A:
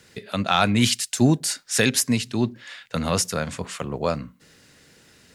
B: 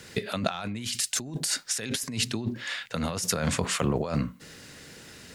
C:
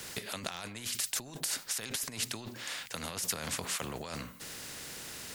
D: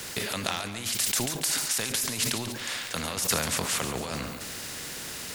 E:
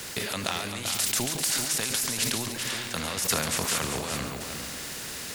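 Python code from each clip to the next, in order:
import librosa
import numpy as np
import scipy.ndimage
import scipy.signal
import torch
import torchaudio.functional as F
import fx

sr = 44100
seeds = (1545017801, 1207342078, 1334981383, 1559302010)

y1 = fx.over_compress(x, sr, threshold_db=-30.0, ratio=-1.0)
y2 = fx.high_shelf(y1, sr, hz=7100.0, db=7.5)
y2 = fx.spectral_comp(y2, sr, ratio=2.0)
y2 = y2 * librosa.db_to_amplitude(-9.0)
y3 = fx.echo_feedback(y2, sr, ms=141, feedback_pct=53, wet_db=-10)
y3 = fx.sustainer(y3, sr, db_per_s=40.0)
y3 = y3 * librosa.db_to_amplitude(6.0)
y4 = y3 + 10.0 ** (-7.0 / 20.0) * np.pad(y3, (int(391 * sr / 1000.0), 0))[:len(y3)]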